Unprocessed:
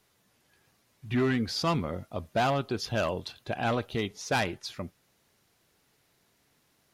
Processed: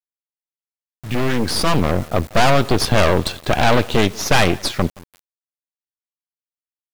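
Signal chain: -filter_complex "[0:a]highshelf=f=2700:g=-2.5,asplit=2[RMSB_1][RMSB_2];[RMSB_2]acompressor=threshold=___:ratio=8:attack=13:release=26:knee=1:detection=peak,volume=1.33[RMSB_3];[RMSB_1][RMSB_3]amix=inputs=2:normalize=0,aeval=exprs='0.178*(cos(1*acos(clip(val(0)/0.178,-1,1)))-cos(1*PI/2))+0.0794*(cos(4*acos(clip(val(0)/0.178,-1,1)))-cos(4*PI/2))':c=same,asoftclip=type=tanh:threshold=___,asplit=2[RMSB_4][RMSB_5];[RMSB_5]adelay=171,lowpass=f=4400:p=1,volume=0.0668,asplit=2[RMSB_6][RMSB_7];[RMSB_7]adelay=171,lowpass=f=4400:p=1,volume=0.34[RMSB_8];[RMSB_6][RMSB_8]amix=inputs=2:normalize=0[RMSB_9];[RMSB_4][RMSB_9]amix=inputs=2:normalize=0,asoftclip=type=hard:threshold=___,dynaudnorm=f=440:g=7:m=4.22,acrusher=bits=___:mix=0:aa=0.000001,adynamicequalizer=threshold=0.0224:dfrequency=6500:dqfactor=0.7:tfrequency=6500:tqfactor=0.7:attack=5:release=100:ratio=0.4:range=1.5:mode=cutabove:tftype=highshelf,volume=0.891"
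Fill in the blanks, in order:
0.0126, 0.2, 0.168, 5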